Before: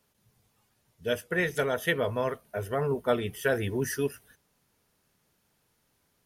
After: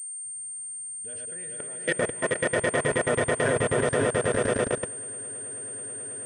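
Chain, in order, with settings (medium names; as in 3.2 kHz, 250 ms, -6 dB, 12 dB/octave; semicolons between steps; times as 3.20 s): echo with a slow build-up 108 ms, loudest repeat 8, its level -4.5 dB; level held to a coarse grid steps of 23 dB; class-D stage that switches slowly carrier 8.7 kHz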